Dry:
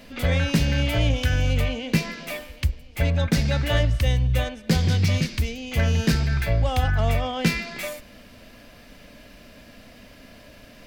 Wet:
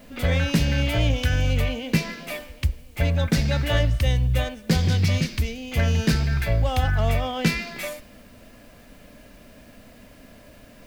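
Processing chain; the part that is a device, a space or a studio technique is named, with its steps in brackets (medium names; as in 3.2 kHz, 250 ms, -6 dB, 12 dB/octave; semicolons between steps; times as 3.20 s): plain cassette with noise reduction switched in (tape noise reduction on one side only decoder only; wow and flutter 16 cents; white noise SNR 37 dB)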